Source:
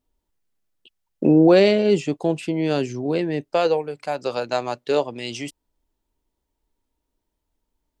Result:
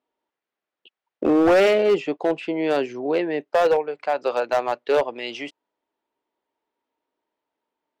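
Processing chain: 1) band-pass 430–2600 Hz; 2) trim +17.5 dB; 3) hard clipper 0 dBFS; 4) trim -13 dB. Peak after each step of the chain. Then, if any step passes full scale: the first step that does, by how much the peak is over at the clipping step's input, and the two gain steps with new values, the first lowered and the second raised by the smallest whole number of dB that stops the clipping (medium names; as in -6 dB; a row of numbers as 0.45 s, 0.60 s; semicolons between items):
-8.0 dBFS, +9.5 dBFS, 0.0 dBFS, -13.0 dBFS; step 2, 9.5 dB; step 2 +7.5 dB, step 4 -3 dB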